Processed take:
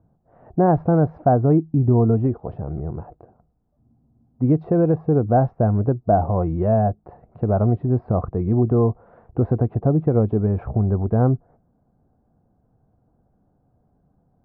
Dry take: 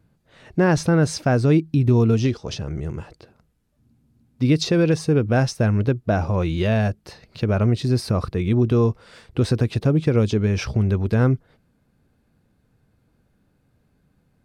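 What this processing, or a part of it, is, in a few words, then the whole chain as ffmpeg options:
under water: -af "lowpass=f=1.1k:w=0.5412,lowpass=f=1.1k:w=1.3066,equalizer=f=720:t=o:w=0.29:g=10.5"

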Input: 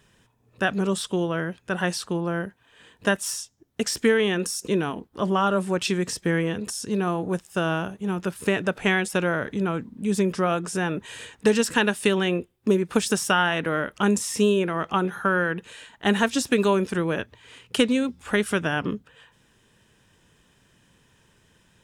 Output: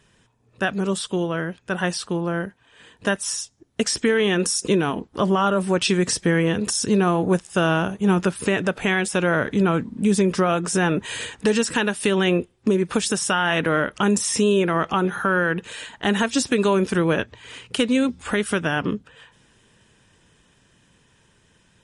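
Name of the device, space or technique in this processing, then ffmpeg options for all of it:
low-bitrate web radio: -af "dynaudnorm=f=650:g=13:m=13dB,alimiter=limit=-11.5dB:level=0:latency=1:release=312,volume=1.5dB" -ar 48000 -c:a libmp3lame -b:a 48k

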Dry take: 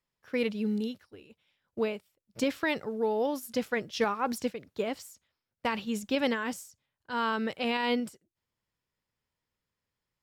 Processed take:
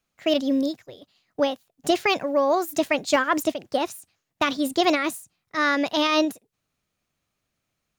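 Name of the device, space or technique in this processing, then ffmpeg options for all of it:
nightcore: -af "asetrate=56448,aresample=44100,volume=8dB"

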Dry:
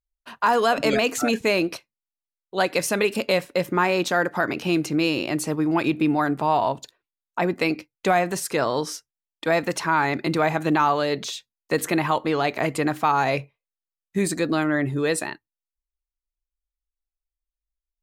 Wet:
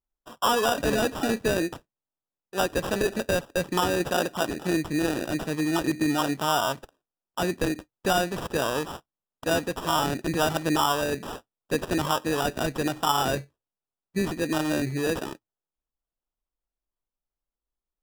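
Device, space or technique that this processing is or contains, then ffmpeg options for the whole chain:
crushed at another speed: -af "asetrate=22050,aresample=44100,acrusher=samples=41:mix=1:aa=0.000001,asetrate=88200,aresample=44100,volume=-3.5dB"

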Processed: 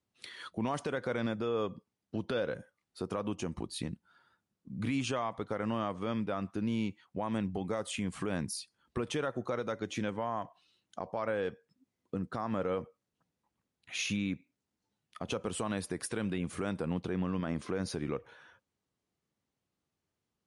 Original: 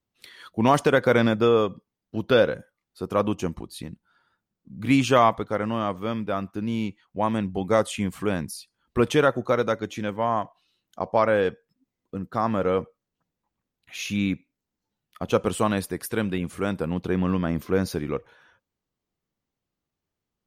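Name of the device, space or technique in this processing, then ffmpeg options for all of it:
podcast mastering chain: -filter_complex "[0:a]asettb=1/sr,asplit=3[a][b][c];[a]atrim=end=17.404[d];[b]atrim=start=17.4:end=17.8,asetpts=PTS-STARTPTS,afade=t=in:d=0.004:c=qsin,afade=t=out:st=0.396:d=0.004:c=qsin,lowshelf=f=320:g=-4[e];[c]atrim=start=17.796[f];[d][e]acrossfade=d=0.004:c1=hsin:c2=qsin[g];[g][f]acrossfade=d=0.004:c1=qsin:c2=hsin,highpass=65,acompressor=threshold=-29dB:ratio=3,alimiter=limit=-23.5dB:level=0:latency=1:release=71" -ar 24000 -c:a libmp3lame -b:a 96k

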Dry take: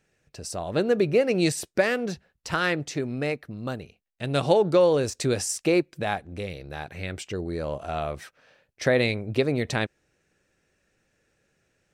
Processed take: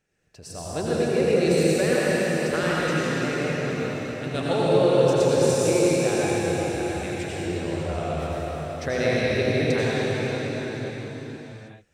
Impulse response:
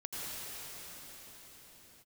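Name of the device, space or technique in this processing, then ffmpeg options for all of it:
cathedral: -filter_complex "[1:a]atrim=start_sample=2205[a];[0:a][a]afir=irnorm=-1:irlink=0,volume=-1dB"

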